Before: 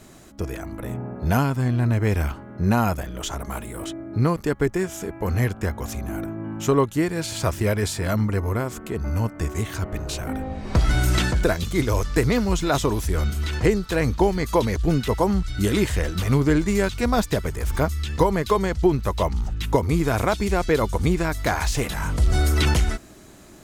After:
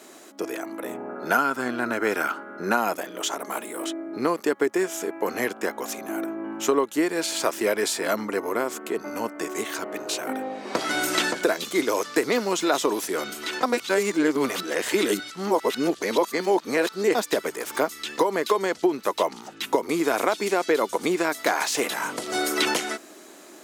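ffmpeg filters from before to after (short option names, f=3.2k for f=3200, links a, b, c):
-filter_complex "[0:a]asettb=1/sr,asplit=3[a][b][c];[a]atrim=end=1.094[d];[b]atrim=start=1.09:end=2.77,asetpts=PTS-STARTPTS,afade=t=in:d=0.004:c=qsin,afade=t=out:st=1.676:d=0.004:c=qsin,equalizer=f=1.4k:t=o:w=0.28:g=12.5[e];[c]atrim=start=2.766[f];[d][e]acrossfade=d=0.004:c1=hsin:c2=qsin[g];[g][f]acrossfade=d=0.004:c1=qsin:c2=hsin,asplit=3[h][i][j];[h]atrim=end=13.632[k];[i]atrim=start=13.628:end=17.152,asetpts=PTS-STARTPTS,areverse[l];[j]atrim=start=17.148[m];[k][l]acrossfade=d=0.004:c1=hsin:c2=hsin[n];[n][m]acrossfade=d=0.004:c1=hsin:c2=hsin,highpass=f=290:w=0.5412,highpass=f=290:w=1.3066,acompressor=threshold=-20dB:ratio=6,volume=3dB"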